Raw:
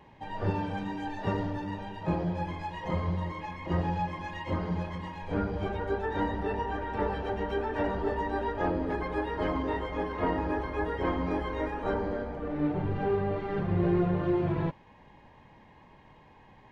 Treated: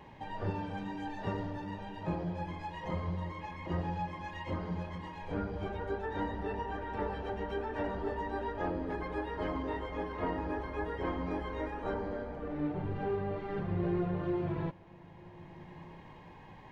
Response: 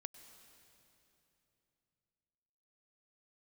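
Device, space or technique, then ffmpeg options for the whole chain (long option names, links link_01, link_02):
ducked reverb: -filter_complex "[0:a]asplit=3[link_01][link_02][link_03];[1:a]atrim=start_sample=2205[link_04];[link_02][link_04]afir=irnorm=-1:irlink=0[link_05];[link_03]apad=whole_len=737285[link_06];[link_05][link_06]sidechaincompress=threshold=-45dB:ratio=8:attack=16:release=767,volume=12dB[link_07];[link_01][link_07]amix=inputs=2:normalize=0,volume=-7.5dB"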